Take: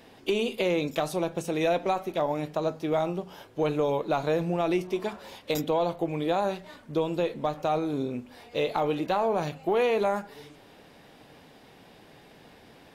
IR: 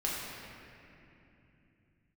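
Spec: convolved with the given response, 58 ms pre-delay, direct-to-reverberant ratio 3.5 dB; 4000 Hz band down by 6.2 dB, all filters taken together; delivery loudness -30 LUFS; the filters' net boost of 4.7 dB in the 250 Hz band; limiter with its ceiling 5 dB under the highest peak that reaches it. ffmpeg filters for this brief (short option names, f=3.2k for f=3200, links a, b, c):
-filter_complex "[0:a]equalizer=f=250:t=o:g=7,equalizer=f=4k:t=o:g=-8,alimiter=limit=-18dB:level=0:latency=1,asplit=2[a][b];[1:a]atrim=start_sample=2205,adelay=58[c];[b][c]afir=irnorm=-1:irlink=0,volume=-10dB[d];[a][d]amix=inputs=2:normalize=0,volume=-3dB"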